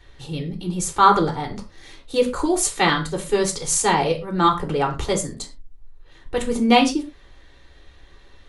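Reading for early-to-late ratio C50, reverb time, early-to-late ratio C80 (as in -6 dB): 12.0 dB, not exponential, 17.0 dB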